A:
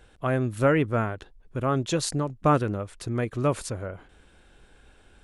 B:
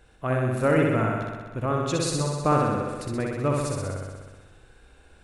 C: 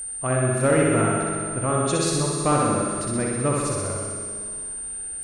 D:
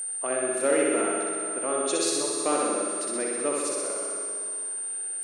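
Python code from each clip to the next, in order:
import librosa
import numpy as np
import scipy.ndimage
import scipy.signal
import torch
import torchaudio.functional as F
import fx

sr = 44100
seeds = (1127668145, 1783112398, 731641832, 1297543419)

y1 = fx.notch(x, sr, hz=3200.0, q=12.0)
y1 = fx.room_flutter(y1, sr, wall_m=10.8, rt60_s=1.4)
y1 = y1 * 10.0 ** (-2.0 / 20.0)
y2 = fx.cheby_harmonics(y1, sr, harmonics=(5,), levels_db=(-25,), full_scale_db=-9.5)
y2 = fx.rev_schroeder(y2, sr, rt60_s=2.4, comb_ms=30, drr_db=4.5)
y2 = y2 + 10.0 ** (-30.0 / 20.0) * np.sin(2.0 * np.pi * 8900.0 * np.arange(len(y2)) / sr)
y3 = scipy.signal.sosfilt(scipy.signal.butter(4, 330.0, 'highpass', fs=sr, output='sos'), y2)
y3 = fx.dynamic_eq(y3, sr, hz=1100.0, q=0.83, threshold_db=-37.0, ratio=4.0, max_db=-7)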